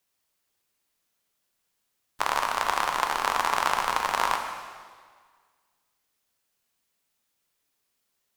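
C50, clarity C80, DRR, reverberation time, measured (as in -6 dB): 5.0 dB, 6.0 dB, 3.0 dB, 1.7 s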